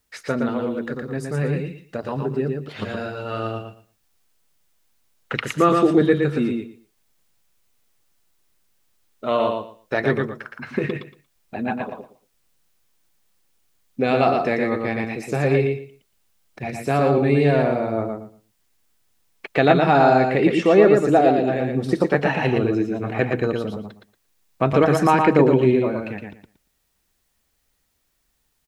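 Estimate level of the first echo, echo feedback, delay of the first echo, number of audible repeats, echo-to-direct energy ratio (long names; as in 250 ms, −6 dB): −4.0 dB, 19%, 116 ms, 3, −4.0 dB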